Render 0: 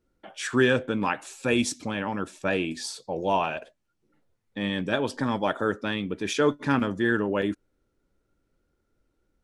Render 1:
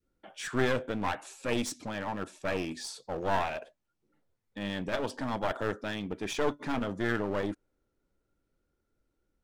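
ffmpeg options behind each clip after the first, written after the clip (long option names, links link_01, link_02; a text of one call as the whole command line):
ffmpeg -i in.wav -af "adynamicequalizer=threshold=0.0126:dfrequency=770:dqfactor=0.96:tfrequency=770:tqfactor=0.96:attack=5:release=100:ratio=0.375:range=2.5:mode=boostabove:tftype=bell,aeval=exprs='clip(val(0),-1,0.0355)':channel_layout=same,volume=-5.5dB" out.wav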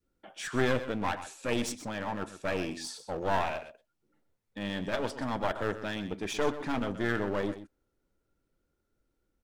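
ffmpeg -i in.wav -af "aecho=1:1:126:0.237" out.wav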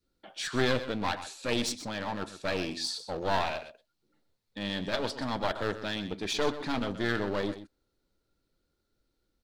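ffmpeg -i in.wav -af "equalizer=frequency=4200:width_type=o:width=0.61:gain=11.5" out.wav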